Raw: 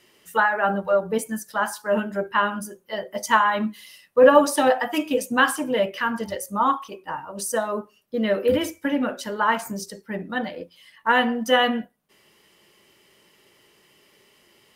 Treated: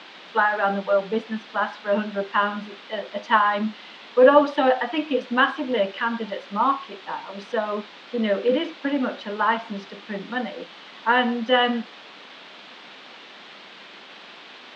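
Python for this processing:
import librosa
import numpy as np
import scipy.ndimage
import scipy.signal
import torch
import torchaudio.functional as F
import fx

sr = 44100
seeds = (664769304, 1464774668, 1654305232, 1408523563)

y = fx.quant_dither(x, sr, seeds[0], bits=6, dither='triangular')
y = scipy.signal.sosfilt(scipy.signal.ellip(3, 1.0, 50, [200.0, 3600.0], 'bandpass', fs=sr, output='sos'), y)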